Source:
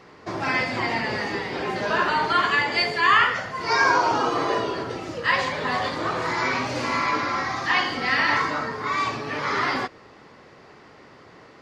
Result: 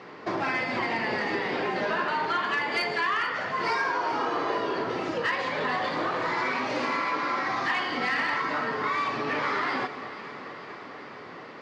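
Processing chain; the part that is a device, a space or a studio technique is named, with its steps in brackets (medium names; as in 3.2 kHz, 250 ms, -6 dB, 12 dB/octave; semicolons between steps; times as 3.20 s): AM radio (band-pass 170–3400 Hz; compression 5:1, threshold -30 dBFS, peak gain reduction 15 dB; saturation -21.5 dBFS, distortion -25 dB); 6.46–7.48 s: high-pass 150 Hz; treble shelf 8.2 kHz +11 dB; echo whose repeats swap between lows and highs 220 ms, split 1.3 kHz, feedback 83%, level -12 dB; trim +4.5 dB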